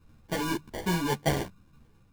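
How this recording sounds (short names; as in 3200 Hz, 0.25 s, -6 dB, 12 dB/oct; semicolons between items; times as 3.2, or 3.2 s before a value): a buzz of ramps at a fixed pitch in blocks of 8 samples; phasing stages 6, 1.8 Hz, lowest notch 720–2000 Hz; aliases and images of a low sample rate 1300 Hz, jitter 0%; a shimmering, thickened sound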